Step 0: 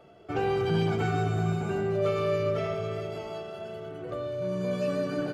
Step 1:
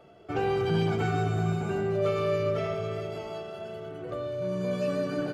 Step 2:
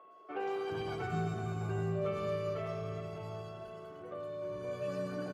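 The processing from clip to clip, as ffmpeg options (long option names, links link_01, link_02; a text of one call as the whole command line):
ffmpeg -i in.wav -af anull out.wav
ffmpeg -i in.wav -filter_complex "[0:a]aeval=exprs='val(0)+0.00398*sin(2*PI*1100*n/s)':channel_layout=same,acrossover=split=270|3400[link_01][link_02][link_03];[link_03]adelay=110[link_04];[link_01]adelay=420[link_05];[link_05][link_02][link_04]amix=inputs=3:normalize=0,volume=-7.5dB" out.wav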